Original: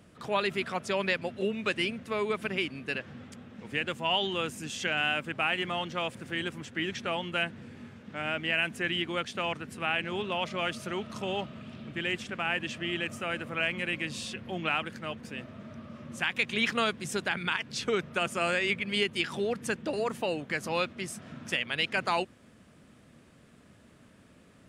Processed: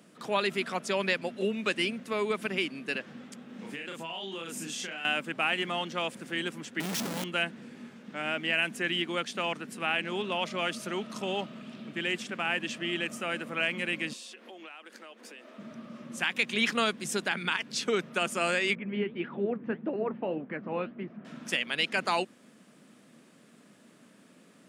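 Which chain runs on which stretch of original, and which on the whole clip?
3.45–5.05 s: doubling 36 ms -2 dB + compression 16:1, threshold -34 dBFS
6.80–7.24 s: compressor with a negative ratio -37 dBFS, ratio -0.5 + tone controls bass +8 dB, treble +12 dB + Schmitt trigger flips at -42 dBFS
14.13–15.58 s: high-pass 320 Hz 24 dB/octave + compression 5:1, threshold -45 dBFS
18.75–21.25 s: Bessel low-pass 1.6 kHz, order 6 + bass shelf 430 Hz +7 dB + flange 1.7 Hz, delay 1.7 ms, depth 9.4 ms, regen +68%
whole clip: high-pass 190 Hz 24 dB/octave; tone controls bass +4 dB, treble +4 dB

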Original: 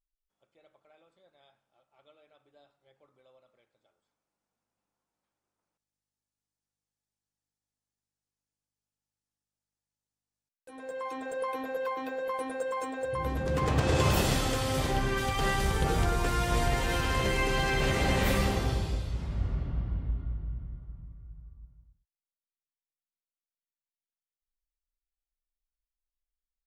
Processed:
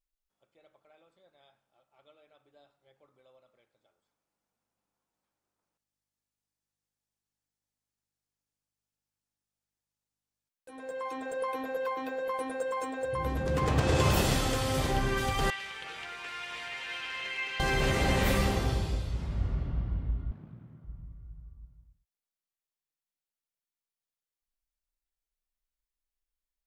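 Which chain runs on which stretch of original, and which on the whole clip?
15.50–17.60 s: band-pass filter 2.5 kHz, Q 1.9 + delay 510 ms -13.5 dB
20.31–20.84 s: self-modulated delay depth 0.98 ms + high-pass 130 Hz 24 dB/octave
whole clip: none

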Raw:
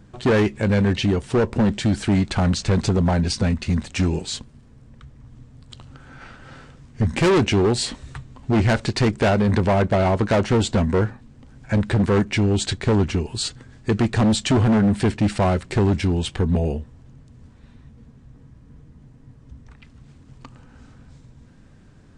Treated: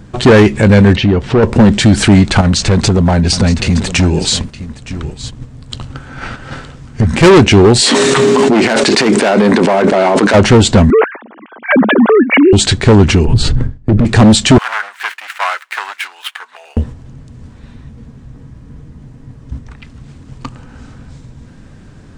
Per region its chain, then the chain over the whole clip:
0.96–1.43 s: compression 2:1, threshold -33 dBFS + distance through air 170 m
2.41–7.23 s: compression 5:1, threshold -27 dBFS + delay 917 ms -13 dB
7.80–10.33 s: high-pass 240 Hz 24 dB/octave + whistle 410 Hz -48 dBFS + level flattener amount 100%
10.90–12.53 s: formants replaced by sine waves + high-pass 240 Hz 24 dB/octave + tape noise reduction on one side only encoder only
13.25–14.05 s: tilt EQ -4 dB/octave + gate with hold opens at -20 dBFS, closes at -26 dBFS + loudspeaker Doppler distortion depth 0.83 ms
14.58–16.77 s: median filter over 9 samples + high-pass 1.2 kHz 24 dB/octave + treble shelf 2.2 kHz -7 dB
whole clip: gate -41 dBFS, range -6 dB; loudness maximiser +19.5 dB; trim -1 dB

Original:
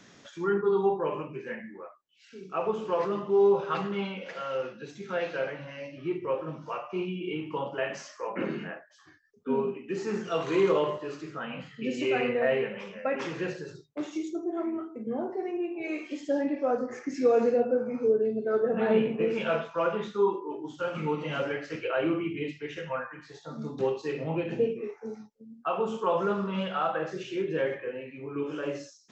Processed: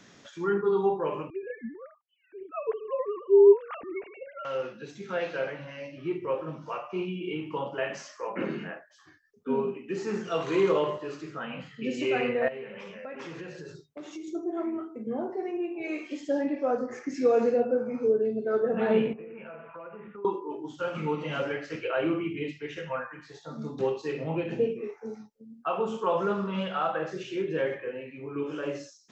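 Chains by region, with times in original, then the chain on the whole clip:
1.30–4.45 s: formants replaced by sine waves + bass shelf 250 Hz +12 dB
12.48–14.28 s: compression 4:1, threshold -38 dBFS + doubling 12 ms -13 dB
19.13–20.25 s: steep low-pass 2.7 kHz 72 dB/octave + compression, threshold -41 dBFS
whole clip: none

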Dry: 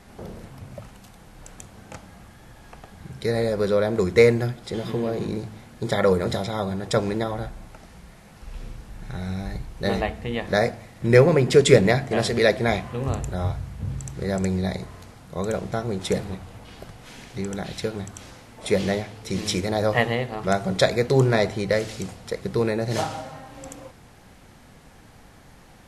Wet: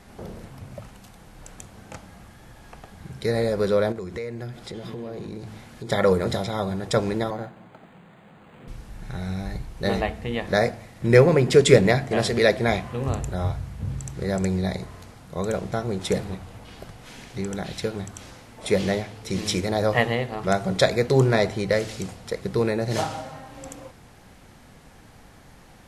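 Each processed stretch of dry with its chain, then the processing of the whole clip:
3.92–5.90 s: compression 4:1, threshold -32 dBFS + treble shelf 8.3 kHz -4 dB + tape noise reduction on one side only encoder only
7.30–8.68 s: high-pass 130 Hz 24 dB/octave + decimation joined by straight lines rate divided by 8×
whole clip: none

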